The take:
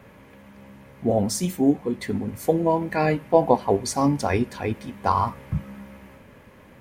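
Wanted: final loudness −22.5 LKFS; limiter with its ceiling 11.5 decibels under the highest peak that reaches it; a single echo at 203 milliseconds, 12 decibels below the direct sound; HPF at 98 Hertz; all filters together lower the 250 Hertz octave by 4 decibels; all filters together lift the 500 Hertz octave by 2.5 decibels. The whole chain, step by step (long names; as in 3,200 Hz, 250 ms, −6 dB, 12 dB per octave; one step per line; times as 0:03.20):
high-pass filter 98 Hz
parametric band 250 Hz −6.5 dB
parametric band 500 Hz +4.5 dB
brickwall limiter −13 dBFS
single-tap delay 203 ms −12 dB
level +4 dB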